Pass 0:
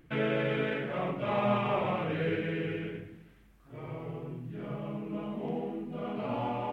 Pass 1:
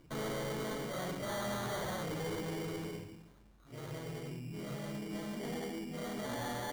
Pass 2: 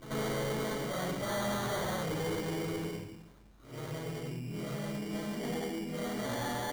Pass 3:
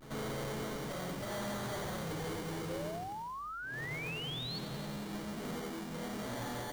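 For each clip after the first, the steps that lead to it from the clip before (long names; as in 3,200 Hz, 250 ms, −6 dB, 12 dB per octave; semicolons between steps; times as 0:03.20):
decimation without filtering 17×; soft clipping −33.5 dBFS, distortion −8 dB; level −1.5 dB
backwards echo 88 ms −11.5 dB; level +3.5 dB
each half-wave held at its own peak; sound drawn into the spectrogram rise, 0:02.69–0:04.59, 500–4,500 Hz −35 dBFS; delay with a high-pass on its return 90 ms, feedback 80%, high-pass 4,100 Hz, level −9.5 dB; level −7.5 dB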